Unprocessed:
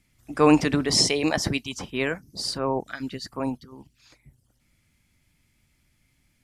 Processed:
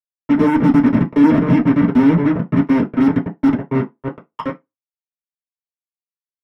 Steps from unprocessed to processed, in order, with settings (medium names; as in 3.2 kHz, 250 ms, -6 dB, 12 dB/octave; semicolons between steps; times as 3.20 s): random holes in the spectrogram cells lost 29%; valve stage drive 21 dB, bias 0.45; 3.05–3.75 s: rippled EQ curve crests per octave 1.2, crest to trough 15 dB; delay 1018 ms -11.5 dB; low-pass sweep 270 Hz -> 1.8 kHz, 3.86–4.59 s; fuzz box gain 42 dB, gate -37 dBFS; tone controls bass +12 dB, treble -7 dB; reverberation RT60 0.15 s, pre-delay 3 ms, DRR -2 dB; trim -12.5 dB